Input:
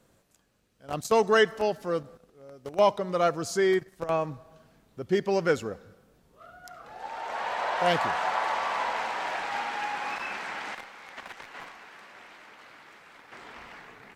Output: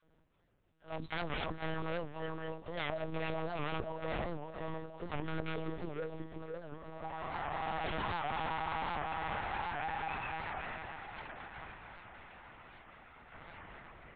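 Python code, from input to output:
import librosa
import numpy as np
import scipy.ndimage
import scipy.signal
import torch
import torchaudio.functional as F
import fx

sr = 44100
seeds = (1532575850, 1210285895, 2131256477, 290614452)

p1 = fx.reverse_delay_fb(x, sr, ms=261, feedback_pct=75, wet_db=-11.0)
p2 = fx.high_shelf(p1, sr, hz=2500.0, db=-6.5)
p3 = fx.quant_float(p2, sr, bits=2)
p4 = 10.0 ** (-24.5 / 20.0) * (np.abs((p3 / 10.0 ** (-24.5 / 20.0) + 3.0) % 4.0 - 2.0) - 1.0)
p5 = fx.dispersion(p4, sr, late='lows', ms=66.0, hz=330.0)
p6 = fx.pitch_keep_formants(p5, sr, semitones=7.5)
p7 = 10.0 ** (-27.5 / 20.0) * np.tanh(p6 / 10.0 ** (-27.5 / 20.0))
p8 = p7 + fx.echo_single(p7, sr, ms=458, db=-16.0, dry=0)
p9 = fx.lpc_monotone(p8, sr, seeds[0], pitch_hz=160.0, order=10)
p10 = fx.record_warp(p9, sr, rpm=78.0, depth_cents=160.0)
y = p10 * 10.0 ** (-3.5 / 20.0)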